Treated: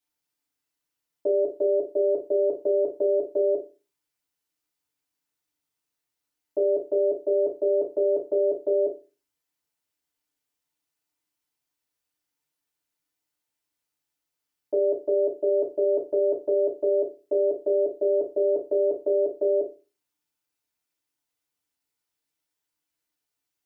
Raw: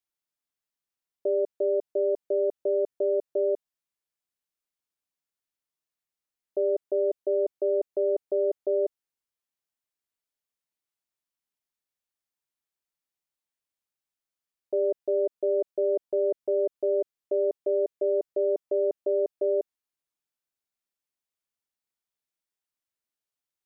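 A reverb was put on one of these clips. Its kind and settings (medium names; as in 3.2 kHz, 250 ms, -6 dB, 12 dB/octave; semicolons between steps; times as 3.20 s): FDN reverb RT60 0.32 s, low-frequency decay 1.2×, high-frequency decay 1×, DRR -5 dB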